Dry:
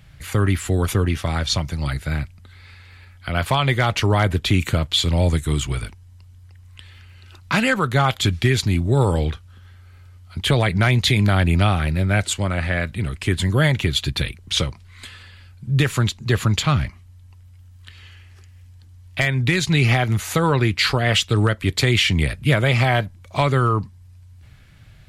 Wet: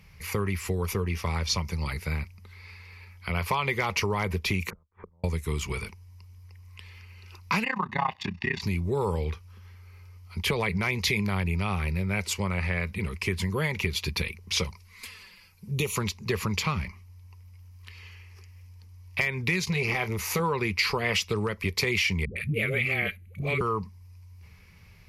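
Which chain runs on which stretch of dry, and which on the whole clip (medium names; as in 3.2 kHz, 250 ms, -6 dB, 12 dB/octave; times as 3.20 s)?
4.70–5.24 s: steep low-pass 1.6 kHz 48 dB/octave + inverted gate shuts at -24 dBFS, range -41 dB
7.64–8.62 s: comb 1.1 ms, depth 93% + AM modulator 31 Hz, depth 85% + band-pass 220–2900 Hz
14.64–15.96 s: treble shelf 5.4 kHz +10.5 dB + touch-sensitive flanger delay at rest 7.9 ms, full sweep at -18.5 dBFS
19.64–20.40 s: peaking EQ 280 Hz -11.5 dB 0.22 oct + doubling 27 ms -12.5 dB + transformer saturation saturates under 320 Hz
22.25–23.61 s: static phaser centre 2.3 kHz, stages 4 + phase dispersion highs, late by 109 ms, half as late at 380 Hz
whole clip: rippled EQ curve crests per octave 0.83, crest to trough 11 dB; compression, threshold -18 dBFS; bass shelf 230 Hz -4.5 dB; trim -3.5 dB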